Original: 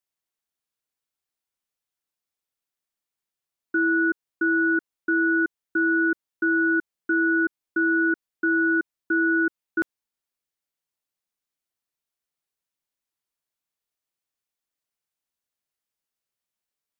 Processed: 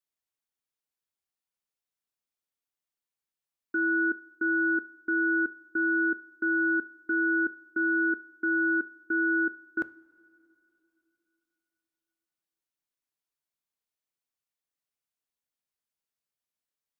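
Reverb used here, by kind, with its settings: two-slope reverb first 0.36 s, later 3.2 s, from -18 dB, DRR 14.5 dB; gain -5 dB

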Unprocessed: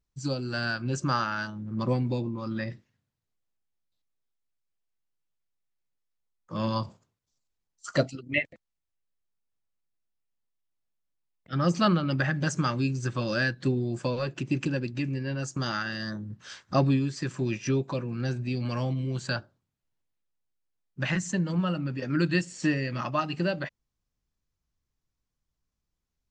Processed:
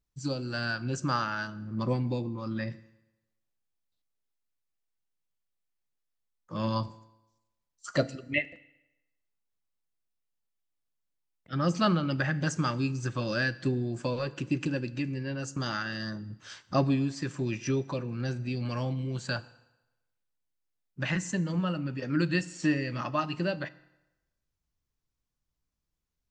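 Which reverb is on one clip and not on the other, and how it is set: FDN reverb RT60 1 s, low-frequency decay 0.85×, high-frequency decay 0.85×, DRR 15.5 dB; gain -2 dB

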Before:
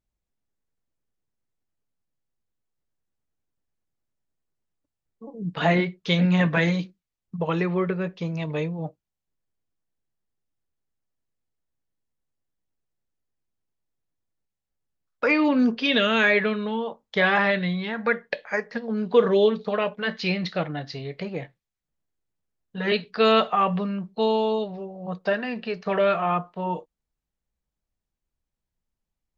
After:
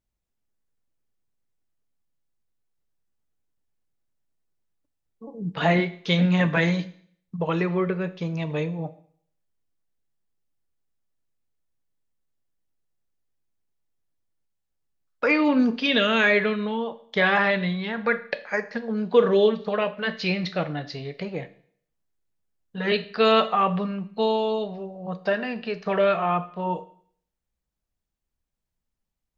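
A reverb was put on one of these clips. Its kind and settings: Schroeder reverb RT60 0.59 s, combs from 27 ms, DRR 14 dB

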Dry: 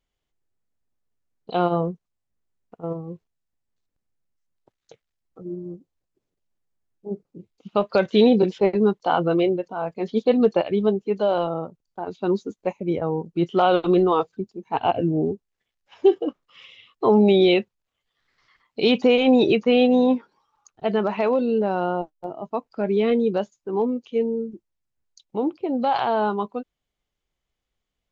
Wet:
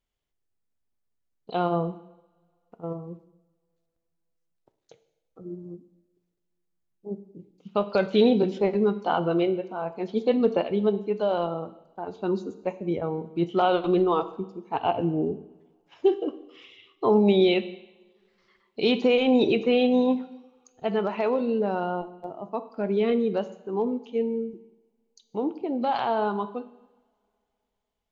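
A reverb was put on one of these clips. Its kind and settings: two-slope reverb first 0.89 s, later 3.1 s, from -27 dB, DRR 11.5 dB; gain -4 dB

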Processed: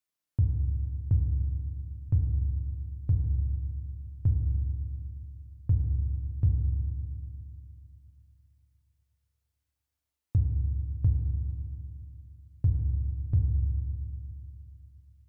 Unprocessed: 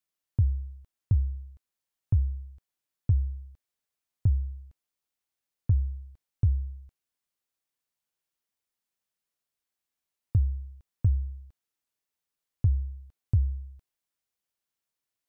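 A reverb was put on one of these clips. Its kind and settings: FDN reverb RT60 2.3 s, low-frequency decay 1.35×, high-frequency decay 0.4×, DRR 3 dB; gain -2 dB

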